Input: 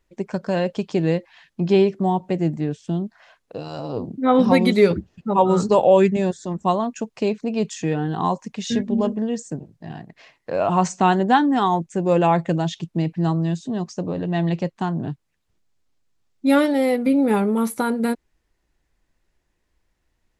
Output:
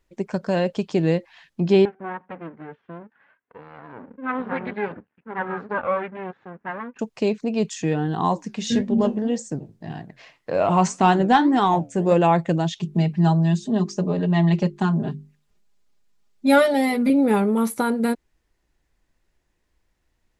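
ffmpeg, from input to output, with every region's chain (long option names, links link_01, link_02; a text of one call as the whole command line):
ffmpeg -i in.wav -filter_complex "[0:a]asettb=1/sr,asplit=3[link_01][link_02][link_03];[link_01]atrim=end=1.854[link_04];[link_02]atrim=start=1.85:end=6.99,asetpts=PTS-STARTPTS,afade=type=in:duration=0.004:curve=qsin,afade=type=out:start_time=5.136:duration=0.004:curve=qsin,flanger=delay=2.2:depth=1.5:regen=25:speed=1.1:shape=triangular,aeval=exprs='max(val(0),0)':channel_layout=same,highpass=180,equalizer=frequency=340:width_type=q:width=4:gain=-8,equalizer=frequency=640:width_type=q:width=4:gain=-7,equalizer=frequency=1600:width_type=q:width=4:gain=5,lowpass=frequency=2300:width=0.5412,lowpass=frequency=2300:width=1.3066[link_05];[link_03]atrim=start=6.986[link_06];[link_04][link_05]acrossfade=duration=0.004:curve1=hsin:curve2=qsin[link_07];[link_07][link_06]acrossfade=duration=0.004:curve1=qsin:curve2=hsin,asettb=1/sr,asplit=3[link_08][link_09][link_10];[link_08]atrim=end=8.314[link_11];[link_09]atrim=start=8.31:end=12.14,asetpts=PTS-STARTPTS,afade=type=in:duration=0.004:curve=qsin,afade=type=out:start_time=3.826:duration=0.004:curve=qsin,acontrast=37,flanger=delay=6.6:depth=6:regen=-75:speed=1.8:shape=sinusoidal[link_12];[link_10]atrim=start=12.136[link_13];[link_11][link_12]acrossfade=duration=0.004:curve1=hsin:curve2=qsin[link_14];[link_14][link_13]acrossfade=duration=0.004:curve1=qsin:curve2=hsin,asettb=1/sr,asplit=3[link_15][link_16][link_17];[link_15]atrim=end=12.804[link_18];[link_16]atrim=start=12.8:end=17.1,asetpts=PTS-STARTPTS,afade=type=in:duration=0.004:curve=qsin,afade=type=out:start_time=4.296:duration=0.004:curve=qsin,bandreject=frequency=50:width_type=h:width=6,bandreject=frequency=100:width_type=h:width=6,bandreject=frequency=150:width_type=h:width=6,bandreject=frequency=200:width_type=h:width=6,bandreject=frequency=250:width_type=h:width=6,bandreject=frequency=300:width_type=h:width=6,bandreject=frequency=350:width_type=h:width=6,bandreject=frequency=400:width_type=h:width=6,aecho=1:1:4.9:0.92,atrim=end_sample=189630[link_19];[link_17]atrim=start=17.096[link_20];[link_18][link_19]acrossfade=duration=0.004:curve1=hsin:curve2=qsin[link_21];[link_21][link_20]acrossfade=duration=0.004:curve1=qsin:curve2=hsin" out.wav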